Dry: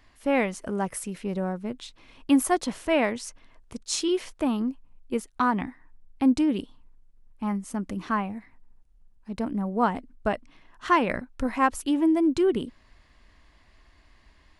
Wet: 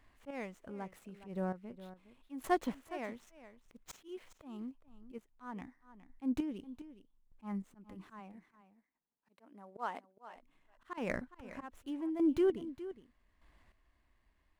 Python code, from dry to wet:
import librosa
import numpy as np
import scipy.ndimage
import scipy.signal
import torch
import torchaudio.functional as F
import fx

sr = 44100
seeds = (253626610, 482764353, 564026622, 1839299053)

y = scipy.signal.medfilt(x, 9)
y = fx.highpass(y, sr, hz=fx.line((8.19, 180.0), (10.35, 690.0)), slope=12, at=(8.19, 10.35), fade=0.02)
y = fx.auto_swell(y, sr, attack_ms=178.0)
y = fx.chopper(y, sr, hz=0.82, depth_pct=65, duty_pct=25)
y = y + 10.0 ** (-14.5 / 20.0) * np.pad(y, (int(413 * sr / 1000.0), 0))[:len(y)]
y = F.gain(torch.from_numpy(y), -7.0).numpy()